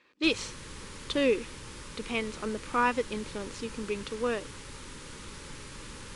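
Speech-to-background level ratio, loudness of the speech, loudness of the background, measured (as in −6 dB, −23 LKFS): 12.5 dB, −31.5 LKFS, −44.0 LKFS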